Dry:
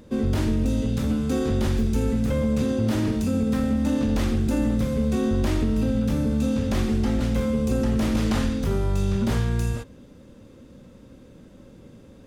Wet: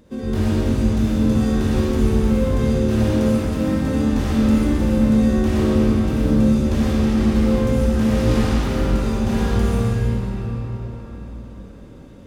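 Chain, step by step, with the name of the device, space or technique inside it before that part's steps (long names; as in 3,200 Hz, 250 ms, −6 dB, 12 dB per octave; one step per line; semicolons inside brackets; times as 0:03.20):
cathedral (convolution reverb RT60 5.0 s, pre-delay 51 ms, DRR −8.5 dB)
level −4 dB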